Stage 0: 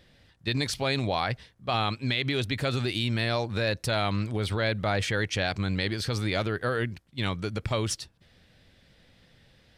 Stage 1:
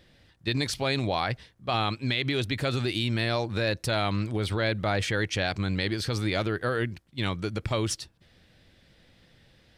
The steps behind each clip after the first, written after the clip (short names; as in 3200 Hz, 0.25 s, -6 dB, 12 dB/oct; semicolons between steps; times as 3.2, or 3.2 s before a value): bell 330 Hz +4 dB 0.23 oct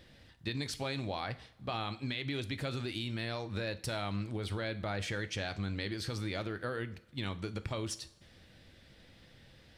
compressor 2.5:1, threshold -39 dBFS, peak gain reduction 11 dB; two-slope reverb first 0.51 s, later 2.3 s, from -21 dB, DRR 11 dB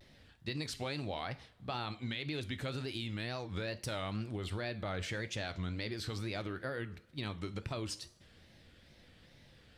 wow and flutter 140 cents; gain -2 dB